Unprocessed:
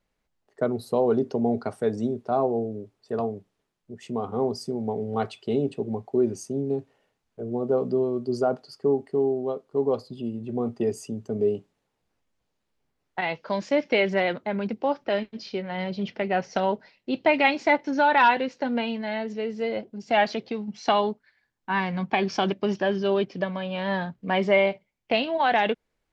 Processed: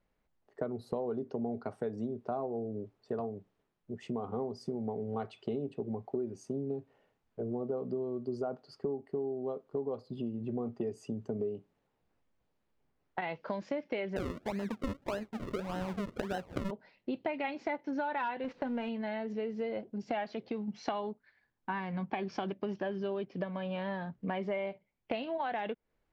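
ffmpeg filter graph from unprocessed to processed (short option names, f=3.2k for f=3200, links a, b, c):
-filter_complex "[0:a]asettb=1/sr,asplit=3[a][b][c];[a]atrim=end=14.164[d];[b]atrim=start=14.16:end=16.71,asetpts=PTS-STARTPTS,afade=t=in:d=0.004:c=qsin,afade=t=out:st=2.546:d=0.004:c=qsin,acompressor=mode=upward:threshold=-32dB:ratio=2.5:attack=3.2:release=140:knee=2.83:detection=peak,acrusher=samples=38:mix=1:aa=0.000001:lfo=1:lforange=38:lforate=1.7[e];[c]atrim=start=16.706[f];[d][e]acrossfade=d=0.004:c1=hsin:c2=qsin[g];[g][f]acrossfade=d=0.004:c1=qsin:c2=hsin,asettb=1/sr,asplit=3[h][i][j];[h]atrim=end=18.444[k];[i]atrim=start=18.44:end=18.89,asetpts=PTS-STARTPTS,afade=t=in:d=0.004:c=qsin,afade=t=out:st=0.446:d=0.004:c=qsin,aeval=exprs='val(0)+0.5*0.0188*sgn(val(0))':c=same,lowpass=3.8k,agate=range=-14dB:threshold=-37dB:ratio=16:release=100:detection=peak[l];[j]atrim=start=18.886[m];[k][l]acrossfade=d=0.004:c1=hsin:c2=qsin[n];[n][m]acrossfade=d=0.004:c1=qsin:c2=hsin,lowpass=f=1.9k:p=1,acompressor=threshold=-33dB:ratio=6"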